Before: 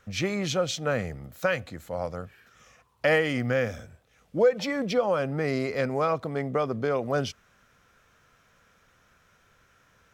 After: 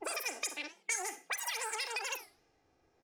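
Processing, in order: median filter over 5 samples; wide varispeed 3.34×; level-controlled noise filter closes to 1.2 kHz, open at -21 dBFS; comb 2.5 ms, depth 51%; on a send at -11 dB: reverberation RT60 0.25 s, pre-delay 38 ms; on the sum: formant shift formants +3 st; peaking EQ 1.9 kHz -5 dB 0.33 oct; compression, threshold -31 dBFS, peak gain reduction 12.5 dB; treble shelf 5.8 kHz +11.5 dB; warped record 45 rpm, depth 250 cents; trim -5.5 dB

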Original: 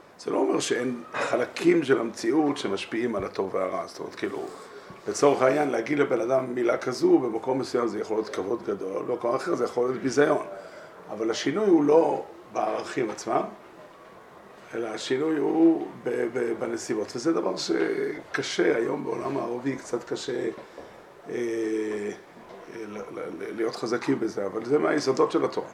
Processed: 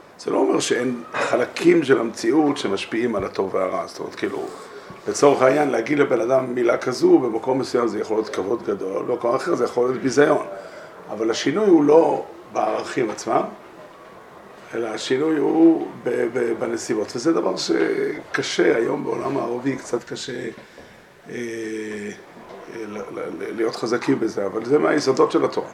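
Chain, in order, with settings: time-frequency box 19.99–22.18 s, 270–1400 Hz -7 dB; trim +5.5 dB

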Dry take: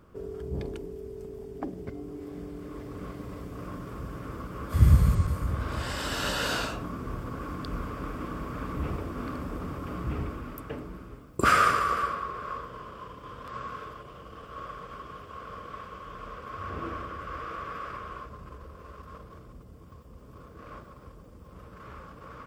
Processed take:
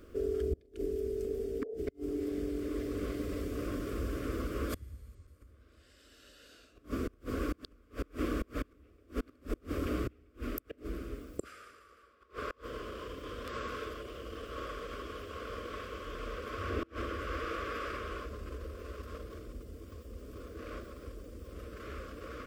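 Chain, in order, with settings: inverted gate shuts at -25 dBFS, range -32 dB; spectral replace 1.28–1.75 s, 410–900 Hz; static phaser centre 370 Hz, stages 4; trim +6 dB

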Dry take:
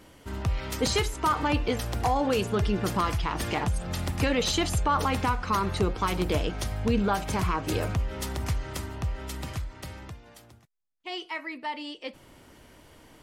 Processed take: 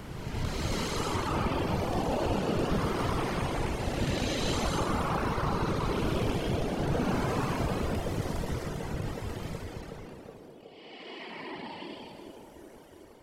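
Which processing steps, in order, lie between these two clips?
spectral blur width 600 ms; whisper effect; reverb removal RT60 1.8 s; on a send: band-passed feedback delay 370 ms, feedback 77%, band-pass 430 Hz, level -4.5 dB; on the sum: trim +4 dB

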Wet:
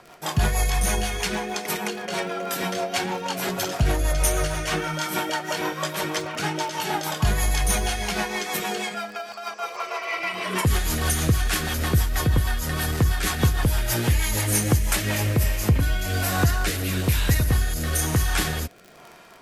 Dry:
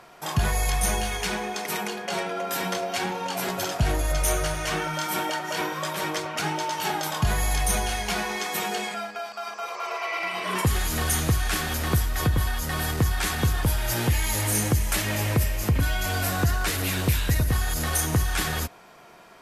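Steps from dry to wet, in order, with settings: rotary cabinet horn 6.3 Hz, later 1.1 Hz, at 14.63 s; crackle 28 per s -37 dBFS; trim +4 dB

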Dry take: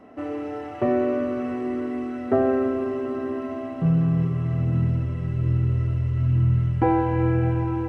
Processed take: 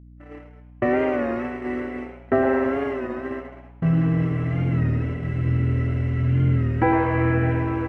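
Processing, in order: gate -27 dBFS, range -45 dB; peaking EQ 1.9 kHz +11.5 dB 0.84 oct; frequency-shifting echo 106 ms, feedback 39%, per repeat +150 Hz, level -12 dB; hum 60 Hz, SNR 23 dB; warped record 33 1/3 rpm, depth 100 cents

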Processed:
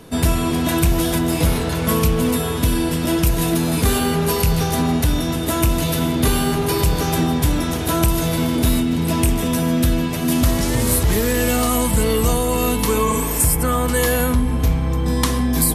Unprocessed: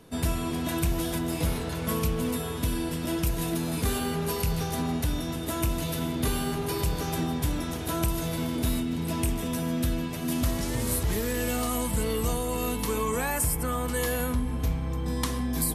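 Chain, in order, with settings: spectral replace 13.10–13.40 s, 290–5800 Hz both; in parallel at -10 dB: saturation -24.5 dBFS, distortion -14 dB; on the sum: trim +8.5 dB

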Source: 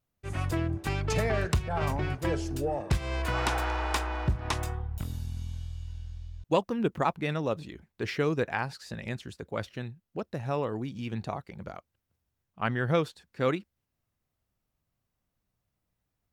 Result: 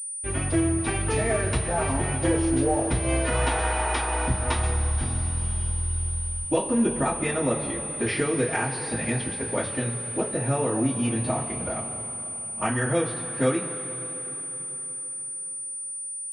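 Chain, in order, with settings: compression, threshold -30 dBFS, peak gain reduction 10.5 dB; two-slope reverb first 0.21 s, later 4.5 s, from -20 dB, DRR -9 dB; class-D stage that switches slowly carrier 9.3 kHz

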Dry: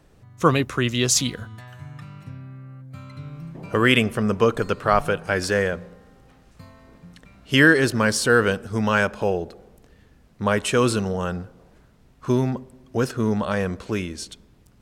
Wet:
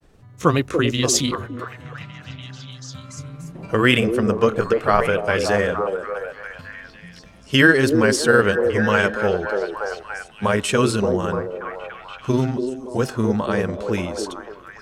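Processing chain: granulator 100 ms, grains 20 per s, spray 14 ms, pitch spread up and down by 0 st; repeats whose band climbs or falls 289 ms, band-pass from 400 Hz, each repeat 0.7 oct, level -2 dB; trim +2.5 dB

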